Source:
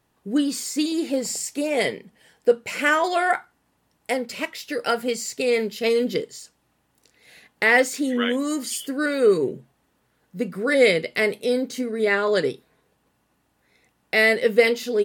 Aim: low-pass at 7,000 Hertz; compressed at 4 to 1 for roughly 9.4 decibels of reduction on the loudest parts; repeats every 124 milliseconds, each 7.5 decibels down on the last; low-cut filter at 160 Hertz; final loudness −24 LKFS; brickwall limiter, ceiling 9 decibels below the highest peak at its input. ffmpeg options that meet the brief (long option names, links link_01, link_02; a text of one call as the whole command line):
ffmpeg -i in.wav -af "highpass=160,lowpass=7000,acompressor=threshold=-22dB:ratio=4,alimiter=limit=-18dB:level=0:latency=1,aecho=1:1:124|248|372|496|620:0.422|0.177|0.0744|0.0312|0.0131,volume=4dB" out.wav